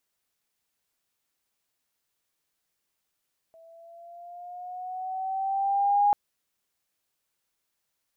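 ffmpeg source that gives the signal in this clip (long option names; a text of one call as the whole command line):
ffmpeg -f lavfi -i "aevalsrc='pow(10,(-17+33*(t/2.59-1))/20)*sin(2*PI*654*2.59/(4*log(2)/12)*(exp(4*log(2)/12*t/2.59)-1))':duration=2.59:sample_rate=44100" out.wav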